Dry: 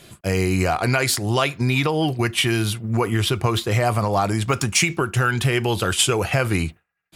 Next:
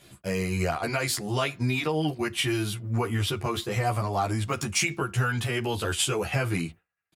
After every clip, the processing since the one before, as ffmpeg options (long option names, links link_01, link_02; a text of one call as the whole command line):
ffmpeg -i in.wav -filter_complex "[0:a]asplit=2[link_01][link_02];[link_02]adelay=11.7,afreqshift=-0.81[link_03];[link_01][link_03]amix=inputs=2:normalize=1,volume=-4dB" out.wav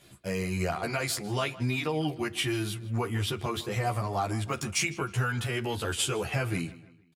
ffmpeg -i in.wav -filter_complex "[0:a]asplit=2[link_01][link_02];[link_02]adelay=156,lowpass=frequency=4200:poles=1,volume=-17.5dB,asplit=2[link_03][link_04];[link_04]adelay=156,lowpass=frequency=4200:poles=1,volume=0.42,asplit=2[link_05][link_06];[link_06]adelay=156,lowpass=frequency=4200:poles=1,volume=0.42[link_07];[link_01][link_03][link_05][link_07]amix=inputs=4:normalize=0,volume=-3dB" out.wav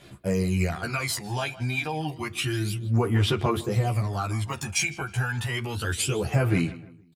ffmpeg -i in.wav -af "aphaser=in_gain=1:out_gain=1:delay=1.3:decay=0.62:speed=0.3:type=sinusoidal" out.wav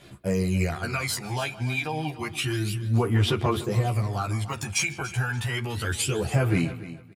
ffmpeg -i in.wav -af "aecho=1:1:288|576:0.168|0.0386" out.wav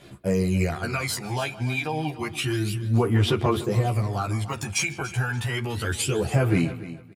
ffmpeg -i in.wav -af "equalizer=frequency=360:width=0.51:gain=3" out.wav